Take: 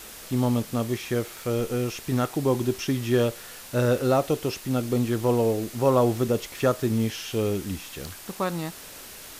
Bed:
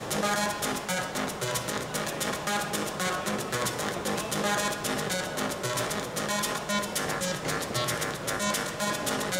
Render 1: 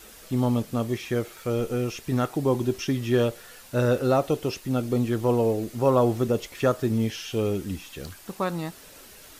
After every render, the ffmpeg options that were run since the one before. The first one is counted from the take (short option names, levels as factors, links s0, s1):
-af "afftdn=nr=7:nf=-43"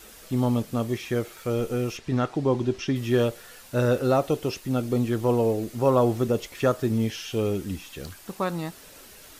-filter_complex "[0:a]asettb=1/sr,asplit=3[s0][s1][s2];[s0]atrim=end=1.974[s3];[s1]atrim=start=1.97:end=2.96,asetpts=PTS-STARTPTS,afade=t=in:d=0.004:c=qsin,afade=t=out:st=0.986:d=0.004:c=qsin,lowpass=5400[s4];[s2]atrim=start=2.956[s5];[s3][s4]acrossfade=d=0.004:c1=hsin:c2=qsin[s6];[s6][s5]acrossfade=d=0.004:c1=qsin:c2=hsin"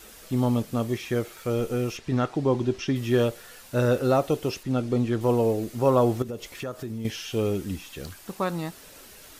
-filter_complex "[0:a]asettb=1/sr,asplit=3[s0][s1][s2];[s0]atrim=end=4.634[s3];[s1]atrim=start=4.63:end=5.21,asetpts=PTS-STARTPTS,afade=t=in:d=0.004:c=qsin,afade=t=out:st=0.576:d=0.004:c=qsin,adynamicsmooth=sensitivity=3:basefreq=7800[s4];[s2]atrim=start=5.206[s5];[s3][s4]acrossfade=d=0.004:c1=hsin:c2=qsin[s6];[s6][s5]acrossfade=d=0.004:c1=qsin:c2=hsin,asettb=1/sr,asplit=3[s7][s8][s9];[s7]atrim=end=6.224[s10];[s8]atrim=start=6.22:end=7.05,asetpts=PTS-STARTPTS,afade=t=in:d=0.004:c=qsin,afade=t=out:st=0.826:d=0.004:c=qsin,acompressor=threshold=0.0224:ratio=3:attack=3.2:release=140:knee=1:detection=peak[s11];[s9]atrim=start=7.046[s12];[s10][s11]acrossfade=d=0.004:c1=hsin:c2=qsin[s13];[s13][s12]acrossfade=d=0.004:c1=qsin:c2=hsin"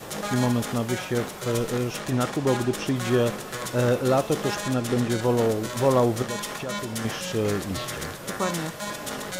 -filter_complex "[1:a]volume=0.668[s0];[0:a][s0]amix=inputs=2:normalize=0"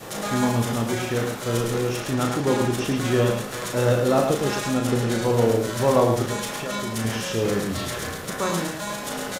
-filter_complex "[0:a]asplit=2[s0][s1];[s1]adelay=35,volume=0.562[s2];[s0][s2]amix=inputs=2:normalize=0,aecho=1:1:108:0.562"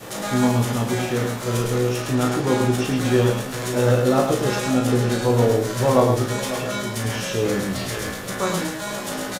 -filter_complex "[0:a]asplit=2[s0][s1];[s1]adelay=16,volume=0.596[s2];[s0][s2]amix=inputs=2:normalize=0,asplit=2[s3][s4];[s4]adelay=548.1,volume=0.224,highshelf=f=4000:g=-12.3[s5];[s3][s5]amix=inputs=2:normalize=0"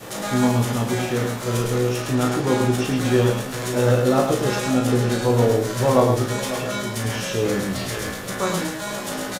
-af anull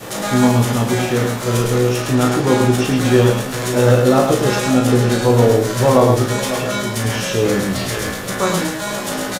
-af "volume=1.88,alimiter=limit=0.891:level=0:latency=1"